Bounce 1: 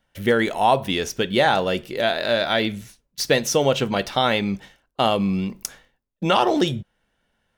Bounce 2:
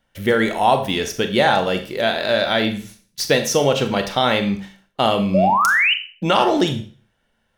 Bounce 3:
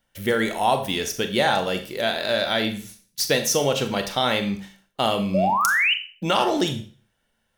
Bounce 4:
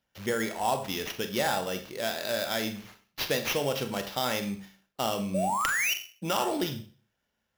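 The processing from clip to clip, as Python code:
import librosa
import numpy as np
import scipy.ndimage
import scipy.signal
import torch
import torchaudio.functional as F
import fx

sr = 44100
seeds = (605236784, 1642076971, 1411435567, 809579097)

y1 = fx.spec_paint(x, sr, seeds[0], shape='rise', start_s=5.34, length_s=0.6, low_hz=540.0, high_hz=3100.0, level_db=-18.0)
y1 = fx.rev_schroeder(y1, sr, rt60_s=0.42, comb_ms=28, drr_db=7.0)
y1 = F.gain(torch.from_numpy(y1), 1.5).numpy()
y2 = fx.high_shelf(y1, sr, hz=5400.0, db=9.5)
y2 = F.gain(torch.from_numpy(y2), -5.0).numpy()
y3 = scipy.signal.sosfilt(scipy.signal.butter(2, 48.0, 'highpass', fs=sr, output='sos'), y2)
y3 = fx.sample_hold(y3, sr, seeds[1], rate_hz=8600.0, jitter_pct=0)
y3 = F.gain(torch.from_numpy(y3), -7.5).numpy()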